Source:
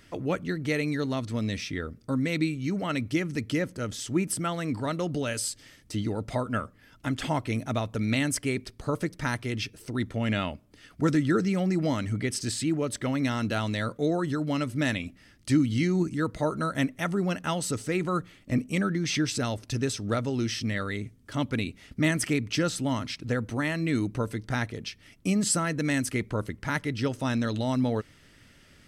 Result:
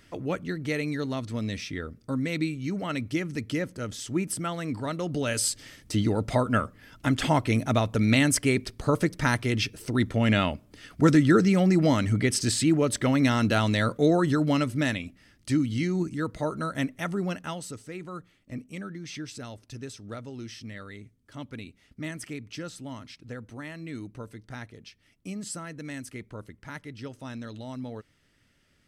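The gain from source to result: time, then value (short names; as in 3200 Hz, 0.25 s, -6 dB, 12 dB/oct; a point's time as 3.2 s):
5.02 s -1.5 dB
5.47 s +5 dB
14.47 s +5 dB
15.06 s -2 dB
17.28 s -2 dB
17.83 s -11 dB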